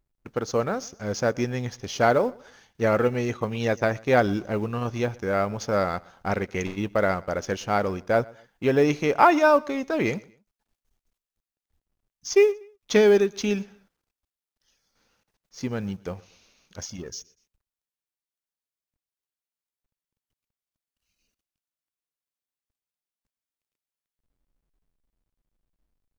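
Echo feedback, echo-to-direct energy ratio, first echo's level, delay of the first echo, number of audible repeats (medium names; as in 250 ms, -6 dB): 33%, -23.5 dB, -24.0 dB, 121 ms, 2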